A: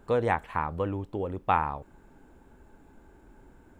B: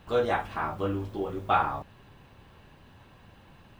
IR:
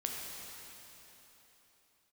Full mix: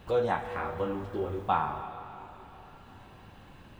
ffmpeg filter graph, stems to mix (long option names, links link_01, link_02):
-filter_complex "[0:a]asplit=2[link_01][link_02];[link_02]afreqshift=1.6[link_03];[link_01][link_03]amix=inputs=2:normalize=1,volume=-5.5dB,asplit=3[link_04][link_05][link_06];[link_05]volume=-7.5dB[link_07];[1:a]volume=-1,volume=0dB,asplit=2[link_08][link_09];[link_09]volume=-14dB[link_10];[link_06]apad=whole_len=167431[link_11];[link_08][link_11]sidechaincompress=threshold=-39dB:ratio=8:attack=16:release=1290[link_12];[2:a]atrim=start_sample=2205[link_13];[link_07][link_10]amix=inputs=2:normalize=0[link_14];[link_14][link_13]afir=irnorm=-1:irlink=0[link_15];[link_04][link_12][link_15]amix=inputs=3:normalize=0"